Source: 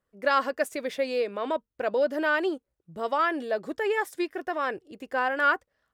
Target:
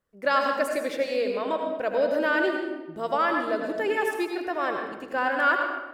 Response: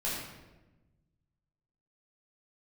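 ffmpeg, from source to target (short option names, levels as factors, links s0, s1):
-filter_complex "[0:a]asplit=2[s0][s1];[1:a]atrim=start_sample=2205,adelay=80[s2];[s1][s2]afir=irnorm=-1:irlink=0,volume=0.376[s3];[s0][s3]amix=inputs=2:normalize=0"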